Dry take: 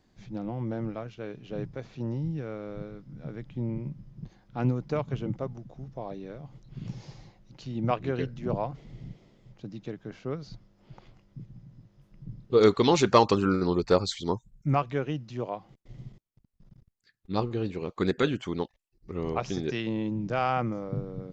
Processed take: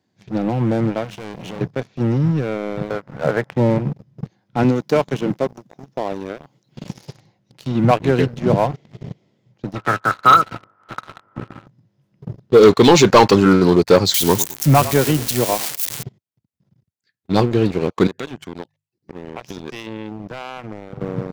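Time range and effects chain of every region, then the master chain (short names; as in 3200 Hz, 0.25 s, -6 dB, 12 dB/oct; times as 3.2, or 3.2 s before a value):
1.04–1.61 bell 190 Hz +8.5 dB 0.21 oct + compressor 5:1, threshold -45 dBFS + sample leveller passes 3
2.9–3.79 HPF 62 Hz 24 dB/oct + band shelf 950 Hz +15 dB 2.4 oct
4.63–7.07 HPF 200 Hz + high shelf 5000 Hz +9 dB
9.74–11.66 spectral limiter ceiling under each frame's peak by 23 dB + synth low-pass 1300 Hz, resonance Q 16 + bell 110 Hz +7.5 dB 0.37 oct
14.14–16.03 switching spikes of -23.5 dBFS + frequency-shifting echo 0.104 s, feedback 43%, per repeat -34 Hz, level -15 dB
18.07–21.01 notches 50/100/150 Hz + compressor 3:1, threshold -43 dBFS + HPF 86 Hz 24 dB/oct
whole clip: HPF 94 Hz 24 dB/oct; notch 1200 Hz, Q 11; sample leveller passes 3; gain +3 dB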